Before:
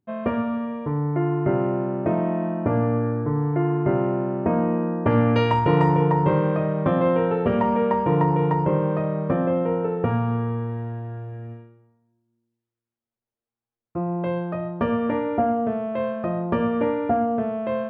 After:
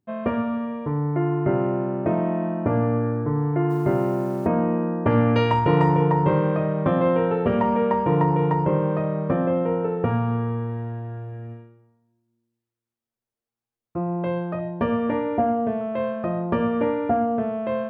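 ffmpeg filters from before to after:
ffmpeg -i in.wav -filter_complex "[0:a]asplit=3[link_01][link_02][link_03];[link_01]afade=type=out:start_time=3.69:duration=0.02[link_04];[link_02]acrusher=bits=7:mix=0:aa=0.5,afade=type=in:start_time=3.69:duration=0.02,afade=type=out:start_time=4.46:duration=0.02[link_05];[link_03]afade=type=in:start_time=4.46:duration=0.02[link_06];[link_04][link_05][link_06]amix=inputs=3:normalize=0,asettb=1/sr,asplit=3[link_07][link_08][link_09];[link_07]atrim=end=14.594[link_10];[link_08]atrim=start=14.59:end=15.81,asetpts=PTS-STARTPTS,afade=type=in:duration=0.004:curve=qsin,afade=type=out:start_time=1.216:duration=0.004:curve=qsin,asuperstop=centerf=1300:order=12:qfactor=6.5[link_11];[link_09]atrim=start=15.806[link_12];[link_10][link_11]acrossfade=duration=0.004:curve1=hsin:curve2=qsin[link_13];[link_13][link_12]acrossfade=duration=0.004:curve1=qsin:curve2=hsin" out.wav

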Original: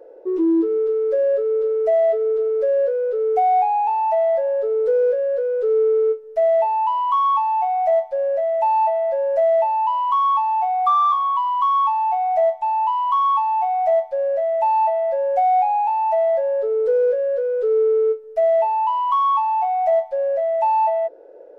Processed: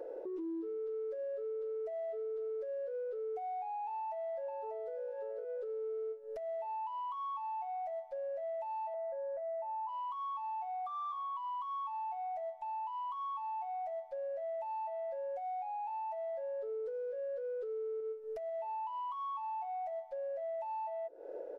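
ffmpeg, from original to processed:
ffmpeg -i in.wav -filter_complex "[0:a]asplit=2[link_01][link_02];[link_02]afade=type=in:start_time=3.89:duration=0.01,afade=type=out:start_time=4.85:duration=0.01,aecho=0:1:590|1180|1770:0.749894|0.149979|0.0299958[link_03];[link_01][link_03]amix=inputs=2:normalize=0,asettb=1/sr,asplit=3[link_04][link_05][link_06];[link_04]atrim=end=8.944[link_07];[link_05]atrim=start=8.94:end=9.89,asetpts=PTS-STARTPTS,afade=type=in:duration=0.004:curve=qsin,afade=type=out:start_time=0.946:duration=0.004:curve=qsin,lowpass=frequency=1900:width=0.5412,lowpass=frequency=1900:width=1.3066[link_08];[link_06]atrim=start=9.886[link_09];[link_07][link_08]acrossfade=duration=0.004:curve1=hsin:curve2=qsin[link_10];[link_10][link_09]acrossfade=duration=0.004:curve1=qsin:curve2=hsin,asettb=1/sr,asplit=3[link_11][link_12][link_13];[link_11]atrim=end=18.004[link_14];[link_12]atrim=start=18:end=18.49,asetpts=PTS-STARTPTS,afade=type=in:duration=0.004:curve=qsin,afade=type=out:start_time=0.486:duration=0.004:curve=qsin,acompressor=threshold=-23dB:ratio=2:attack=3.2:release=140:knee=1:detection=peak[link_15];[link_13]atrim=start=18.486[link_16];[link_14][link_15]acrossfade=duration=0.004:curve1=hsin:curve2=qsin[link_17];[link_17][link_16]acrossfade=duration=0.004:curve1=qsin:curve2=hsin,acompressor=threshold=-31dB:ratio=16,alimiter=level_in=13dB:limit=-24dB:level=0:latency=1:release=430,volume=-13dB,volume=2dB" out.wav

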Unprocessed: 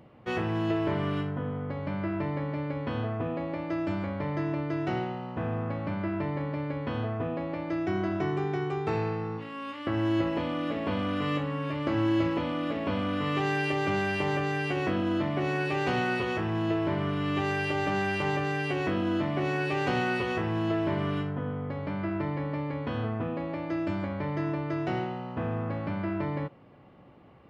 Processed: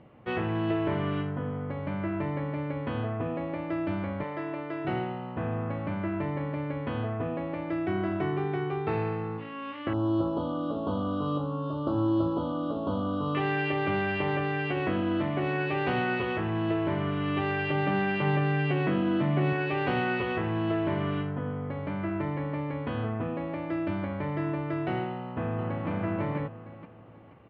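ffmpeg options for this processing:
ffmpeg -i in.wav -filter_complex "[0:a]asettb=1/sr,asplit=3[link_01][link_02][link_03];[link_01]atrim=end=4.234[link_04];[link_02]atrim=start=4.23:end=4.85,asetpts=PTS-STARTPTS,afade=type=in:duration=0.004:curve=qsin,afade=type=out:start_time=0.616:duration=0.004:curve=qsin,bass=frequency=250:gain=-14,treble=frequency=4000:gain=0[link_05];[link_03]atrim=start=4.846[link_06];[link_04][link_05]acrossfade=duration=0.004:curve1=hsin:curve2=qsin[link_07];[link_07][link_06]acrossfade=duration=0.004:curve1=qsin:curve2=hsin,asettb=1/sr,asplit=3[link_08][link_09][link_10];[link_08]atrim=end=9.934[link_11];[link_09]atrim=start=9.93:end=13.35,asetpts=PTS-STARTPTS,afade=type=in:duration=0.004:curve=qsin,afade=type=out:start_time=3.416:duration=0.004:curve=qsin,asuperstop=centerf=2100:order=8:qfactor=1.1[link_12];[link_10]atrim=start=13.346[link_13];[link_11][link_12]acrossfade=duration=0.004:curve1=hsin:curve2=qsin[link_14];[link_14][link_13]acrossfade=duration=0.004:curve1=qsin:curve2=hsin,asettb=1/sr,asplit=3[link_15][link_16][link_17];[link_15]atrim=end=17.704[link_18];[link_16]atrim=start=17.7:end=19.53,asetpts=PTS-STARTPTS,afade=type=in:duration=0.004:curve=qsin,afade=type=out:start_time=1.826:duration=0.004:curve=qsin,lowshelf=frequency=100:width_type=q:width=3:gain=-11.5[link_19];[link_17]atrim=start=19.526[link_20];[link_18][link_19]acrossfade=duration=0.004:curve1=hsin:curve2=qsin[link_21];[link_21][link_20]acrossfade=duration=0.004:curve1=qsin:curve2=hsin,asplit=2[link_22][link_23];[link_23]afade=type=in:start_time=25.1:duration=0.01,afade=type=out:start_time=25.89:duration=0.01,aecho=0:1:480|960|1440|1920:0.630957|0.220835|0.0772923|0.0270523[link_24];[link_22][link_24]amix=inputs=2:normalize=0,lowpass=frequency=3500:width=0.5412,lowpass=frequency=3500:width=1.3066" out.wav

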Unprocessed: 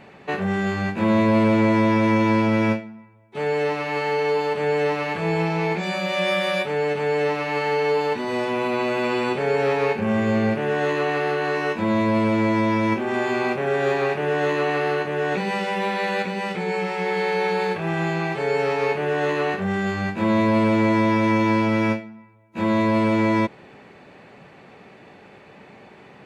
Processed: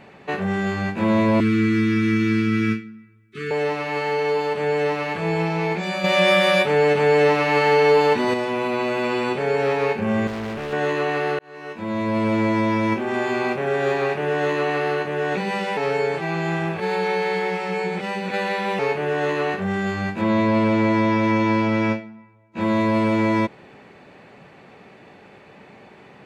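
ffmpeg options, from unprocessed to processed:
ffmpeg -i in.wav -filter_complex "[0:a]asettb=1/sr,asplit=3[link_01][link_02][link_03];[link_01]atrim=end=1.404[link_04];[link_02]atrim=start=1.4:end=3.51,asetpts=PTS-STARTPTS,afade=type=in:duration=0.004:curve=qsin,afade=type=out:start_time=2.106:duration=0.004:curve=qsin,asuperstop=centerf=700:order=20:qfactor=1[link_05];[link_03]atrim=start=3.506[link_06];[link_04][link_05]acrossfade=duration=0.004:curve1=hsin:curve2=qsin[link_07];[link_07][link_06]acrossfade=duration=0.004:curve1=qsin:curve2=hsin,asettb=1/sr,asplit=3[link_08][link_09][link_10];[link_08]atrim=end=6.044[link_11];[link_09]atrim=start=6.04:end=8.34,asetpts=PTS-STARTPTS,afade=type=in:duration=0.004:curve=qsin,afade=type=out:start_time=2.296:duration=0.004:curve=qsin,acontrast=51[link_12];[link_10]atrim=start=8.336[link_13];[link_11][link_12]acrossfade=duration=0.004:curve1=hsin:curve2=qsin[link_14];[link_14][link_13]acrossfade=duration=0.004:curve1=qsin:curve2=hsin,asettb=1/sr,asplit=3[link_15][link_16][link_17];[link_15]atrim=end=10.274[link_18];[link_16]atrim=start=10.27:end=10.73,asetpts=PTS-STARTPTS,afade=type=in:duration=0.004:curve=qsin,afade=type=out:start_time=0.456:duration=0.004:curve=qsin,asoftclip=type=hard:threshold=-27dB[link_19];[link_17]atrim=start=10.726[link_20];[link_18][link_19]acrossfade=duration=0.004:curve1=hsin:curve2=qsin[link_21];[link_21][link_20]acrossfade=duration=0.004:curve1=qsin:curve2=hsin,asettb=1/sr,asplit=3[link_22][link_23][link_24];[link_22]atrim=end=20.214[link_25];[link_23]atrim=start=20.21:end=22.61,asetpts=PTS-STARTPTS,afade=type=in:duration=0.004:curve=qsin,afade=type=out:start_time=2.396:duration=0.004:curve=qsin,lowpass=6900[link_26];[link_24]atrim=start=22.606[link_27];[link_25][link_26]acrossfade=duration=0.004:curve1=hsin:curve2=qsin[link_28];[link_28][link_27]acrossfade=duration=0.004:curve1=qsin:curve2=hsin,asplit=4[link_29][link_30][link_31][link_32];[link_29]atrim=end=11.39,asetpts=PTS-STARTPTS,afade=type=out:start_time=11.386:duration=0.004:curve=hsin[link_33];[link_30]atrim=start=11.39:end=15.772,asetpts=PTS-STARTPTS,afade=type=in:duration=0.95[link_34];[link_31]atrim=start=15.768:end=18.792,asetpts=PTS-STARTPTS,areverse[link_35];[link_32]atrim=start=18.788[link_36];[link_33][link_34]concat=n=2:v=0:a=1[link_37];[link_37][link_35]acrossfade=duration=0.004:curve1=hsin:curve2=hsin[link_38];[link_38][link_36]acrossfade=duration=0.004:curve1=hsin:curve2=hsin" out.wav

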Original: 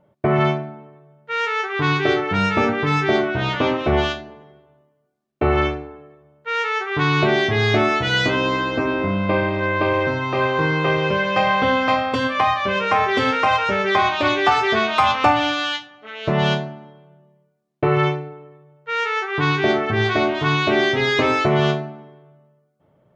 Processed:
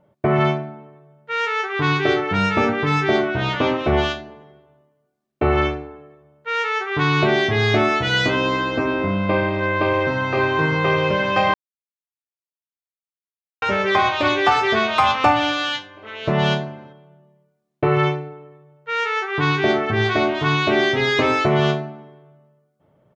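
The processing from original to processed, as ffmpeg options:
ffmpeg -i in.wav -filter_complex "[0:a]asplit=2[link_01][link_02];[link_02]afade=type=in:start_time=9.54:duration=0.01,afade=type=out:start_time=10.2:duration=0.01,aecho=0:1:560|1120|1680|2240|2800|3360|3920|4480|5040|5600|6160|6720:0.446684|0.357347|0.285877|0.228702|0.182962|0.146369|0.117095|0.0936763|0.0749411|0.0599529|0.0479623|0.0383698[link_03];[link_01][link_03]amix=inputs=2:normalize=0,asplit=3[link_04][link_05][link_06];[link_04]atrim=end=11.54,asetpts=PTS-STARTPTS,afade=type=out:start_time=11.536:duration=0.004:curve=hsin[link_07];[link_05]atrim=start=11.54:end=13.62,asetpts=PTS-STARTPTS,volume=0[link_08];[link_06]atrim=start=13.62,asetpts=PTS-STARTPTS,afade=type=in:duration=0.004:curve=hsin[link_09];[link_07][link_08][link_09]concat=n=3:v=0:a=1" out.wav

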